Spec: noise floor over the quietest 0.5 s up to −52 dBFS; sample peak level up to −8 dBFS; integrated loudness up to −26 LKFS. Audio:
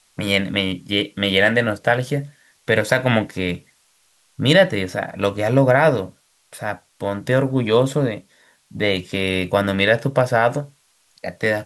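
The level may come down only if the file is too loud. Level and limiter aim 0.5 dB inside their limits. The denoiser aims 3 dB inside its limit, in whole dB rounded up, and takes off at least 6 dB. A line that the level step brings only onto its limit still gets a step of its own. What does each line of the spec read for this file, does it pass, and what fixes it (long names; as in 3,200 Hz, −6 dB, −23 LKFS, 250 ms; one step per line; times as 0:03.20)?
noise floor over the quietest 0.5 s −60 dBFS: in spec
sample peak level −3.5 dBFS: out of spec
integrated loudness −19.5 LKFS: out of spec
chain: level −7 dB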